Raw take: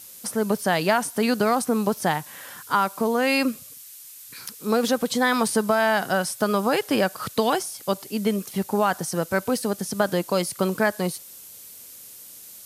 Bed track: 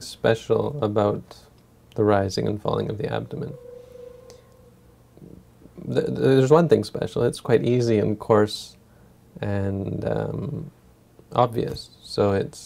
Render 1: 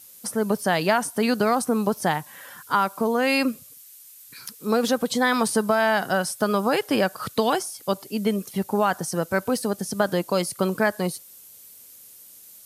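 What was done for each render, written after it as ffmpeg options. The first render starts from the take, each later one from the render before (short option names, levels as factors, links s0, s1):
-af "afftdn=nr=6:nf=-44"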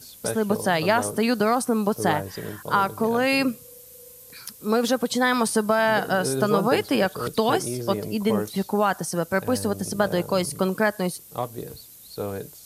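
-filter_complex "[1:a]volume=0.316[s0];[0:a][s0]amix=inputs=2:normalize=0"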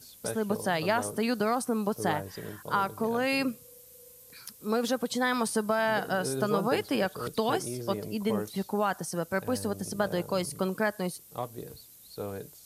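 -af "volume=0.473"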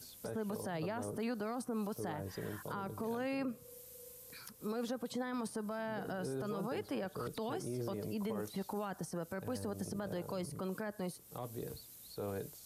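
-filter_complex "[0:a]acrossover=split=460|1700[s0][s1][s2];[s0]acompressor=threshold=0.0178:ratio=4[s3];[s1]acompressor=threshold=0.0112:ratio=4[s4];[s2]acompressor=threshold=0.00282:ratio=4[s5];[s3][s4][s5]amix=inputs=3:normalize=0,alimiter=level_in=2.24:limit=0.0631:level=0:latency=1:release=31,volume=0.447"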